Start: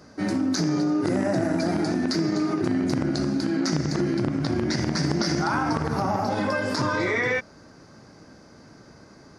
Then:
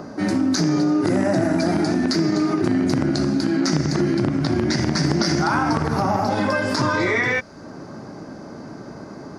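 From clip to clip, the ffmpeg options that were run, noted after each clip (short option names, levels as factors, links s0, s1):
-filter_complex "[0:a]bandreject=f=490:w=12,acrossover=split=130|1200|2300[s0][s1][s2][s3];[s1]acompressor=mode=upward:threshold=0.0316:ratio=2.5[s4];[s0][s4][s2][s3]amix=inputs=4:normalize=0,volume=1.68"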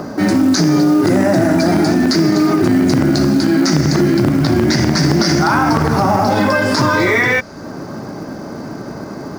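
-filter_complex "[0:a]asplit=2[s0][s1];[s1]alimiter=limit=0.15:level=0:latency=1:release=10,volume=1.33[s2];[s0][s2]amix=inputs=2:normalize=0,acrusher=bits=7:mode=log:mix=0:aa=0.000001,volume=1.19"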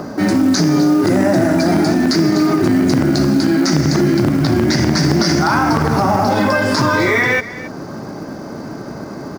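-af "aecho=1:1:272:0.168,volume=0.891"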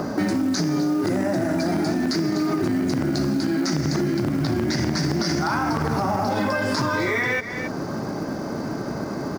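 -af "acompressor=threshold=0.1:ratio=6"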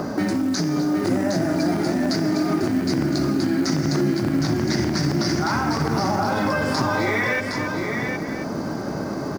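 -af "aecho=1:1:763:0.531"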